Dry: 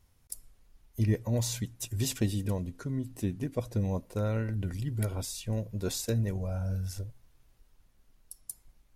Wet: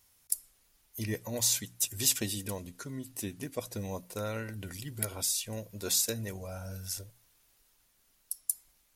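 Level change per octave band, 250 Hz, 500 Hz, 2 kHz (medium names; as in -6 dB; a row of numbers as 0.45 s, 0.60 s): -6.5 dB, -3.0 dB, +3.0 dB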